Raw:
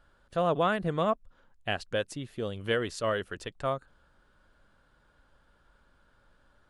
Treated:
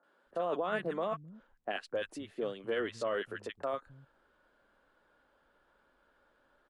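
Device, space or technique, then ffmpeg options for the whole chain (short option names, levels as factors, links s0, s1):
DJ mixer with the lows and highs turned down: -filter_complex "[0:a]asettb=1/sr,asplit=3[s0][s1][s2];[s0]atrim=end=2.314[s3];[s1]atrim=start=2.31:end=3.03,asetpts=PTS-STARTPTS,afade=t=in:d=0.004:c=qsin,afade=t=out:st=0.716:d=0.004:c=qsin,lowpass=8500[s4];[s2]atrim=start=3.026[s5];[s3][s4]acrossfade=d=0.004:c1=hsin:c2=qsin[s6];[s6][s5]acrossfade=d=0.004:c1=qsin:c2=hsin,bass=f=250:g=2,treble=f=4000:g=9,acrossover=split=240 2700:gain=0.126 1 0.126[s7][s8][s9];[s7][s8][s9]amix=inputs=3:normalize=0,acrossover=split=160|1300[s10][s11][s12];[s12]adelay=30[s13];[s10]adelay=260[s14];[s14][s11][s13]amix=inputs=3:normalize=0,alimiter=level_in=1.12:limit=0.0631:level=0:latency=1:release=12,volume=0.891"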